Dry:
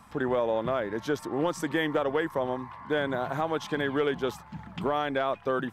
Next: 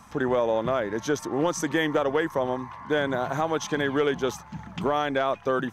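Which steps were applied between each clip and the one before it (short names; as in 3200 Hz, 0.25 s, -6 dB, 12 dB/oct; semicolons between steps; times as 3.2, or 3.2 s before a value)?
bell 6200 Hz +11.5 dB 0.24 oct; gain +3 dB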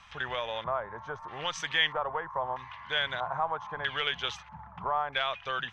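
passive tone stack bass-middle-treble 10-0-10; LFO low-pass square 0.78 Hz 990–3100 Hz; gain +3 dB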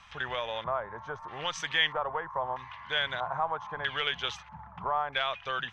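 nothing audible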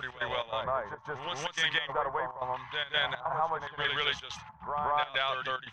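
reverse echo 0.174 s -4 dB; step gate "x.xx.xxxx.xxx" 143 bpm -12 dB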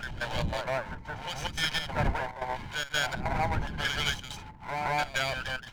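minimum comb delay 1.3 ms; wind noise 130 Hz -39 dBFS; gain +1.5 dB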